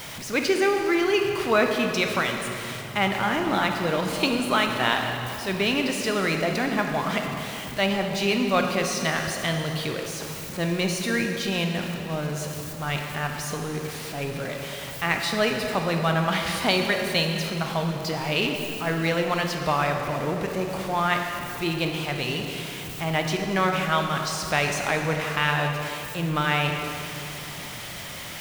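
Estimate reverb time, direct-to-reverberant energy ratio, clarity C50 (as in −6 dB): 2.9 s, 3.0 dB, 4.0 dB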